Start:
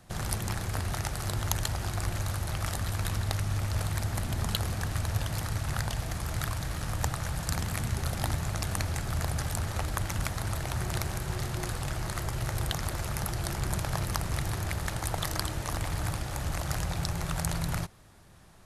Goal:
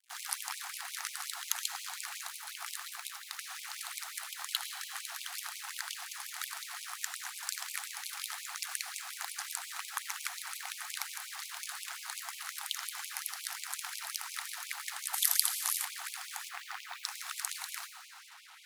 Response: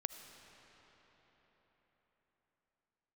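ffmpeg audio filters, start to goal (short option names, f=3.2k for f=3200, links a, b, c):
-filter_complex "[0:a]asubboost=boost=7.5:cutoff=220,asplit=3[a][b][c];[a]afade=t=out:st=16.48:d=0.02[d];[b]highpass=110,lowpass=3.2k,afade=t=in:st=16.48:d=0.02,afade=t=out:st=17.03:d=0.02[e];[c]afade=t=in:st=17.03:d=0.02[f];[d][e][f]amix=inputs=3:normalize=0[g];[1:a]atrim=start_sample=2205[h];[g][h]afir=irnorm=-1:irlink=0,asettb=1/sr,asplit=3[i][j][k];[i]atrim=end=2.264[l];[j]atrim=start=2.26:end=3.39,asetpts=PTS-STARTPTS,afade=t=in:d=0.004:c=qsin,afade=t=out:st=1.126:d=0.004:c=qsin,acompressor=threshold=-18dB:ratio=6[m];[k]atrim=start=3.386[n];[l][m]acrossfade=d=0.004:c1=hsin:c2=qsin[o];[o][n]acrossfade=d=0.004:c1=qsin:c2=hsin,asettb=1/sr,asplit=3[p][q][r];[p]atrim=end=15.134[s];[q]atrim=start=15.13:end=15.85,asetpts=PTS-STARTPTS,afade=t=in:d=0.004:c=qsin,afade=t=out:st=0.716:d=0.004:c=qsin,aemphasis=mode=production:type=50fm[t];[r]atrim=start=15.846[u];[s][t]acrossfade=d=0.004:c1=hsin:c2=qsin[v];[v][u]acrossfade=d=0.004:c1=qsin:c2=hsin,acrusher=bits=7:mix=0:aa=0.5,afftfilt=real='re*gte(b*sr/1024,660*pow(2200/660,0.5+0.5*sin(2*PI*5.6*pts/sr)))':imag='im*gte(b*sr/1024,660*pow(2200/660,0.5+0.5*sin(2*PI*5.6*pts/sr)))':win_size=1024:overlap=0.75,volume=1dB"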